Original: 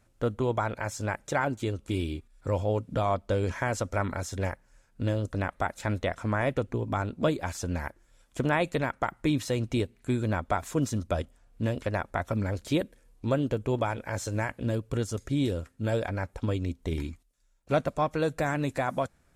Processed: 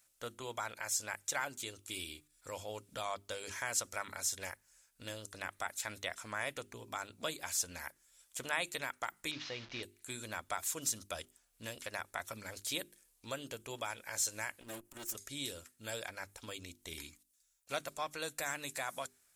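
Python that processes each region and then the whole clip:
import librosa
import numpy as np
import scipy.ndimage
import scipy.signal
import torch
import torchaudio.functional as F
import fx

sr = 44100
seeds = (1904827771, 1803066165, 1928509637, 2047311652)

y = fx.chain(x, sr, fx.delta_mod(bps=32000, step_db=-37.0),
    fx.lowpass(hz=3500.0, slope=12), at=(9.31, 9.83))
y = fx.chain(y, sr, fx.lower_of_two(delay_ms=3.2),
    fx.peak_eq(hz=4200.0, db=-7.0, octaves=1.3),
    fx.transformer_sat(knee_hz=150.0), at=(14.61, 15.15))
y = scipy.signal.lfilter([1.0, -0.97], [1.0], y)
y = fx.hum_notches(y, sr, base_hz=50, count=8)
y = F.gain(torch.from_numpy(y), 6.5).numpy()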